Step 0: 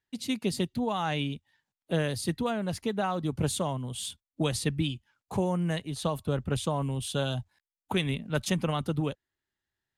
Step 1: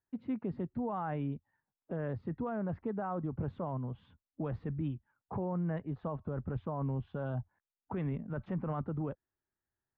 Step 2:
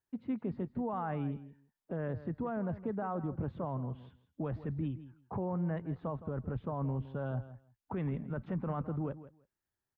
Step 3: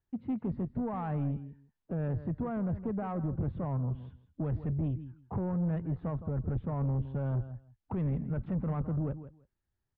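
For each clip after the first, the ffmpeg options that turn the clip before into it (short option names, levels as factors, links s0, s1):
-af "lowpass=f=1500:w=0.5412,lowpass=f=1500:w=1.3066,alimiter=level_in=1.19:limit=0.0631:level=0:latency=1:release=17,volume=0.841,volume=0.75"
-af "aecho=1:1:164|328:0.188|0.0283"
-af "aemphasis=mode=reproduction:type=bsi,asoftclip=type=tanh:threshold=0.0501"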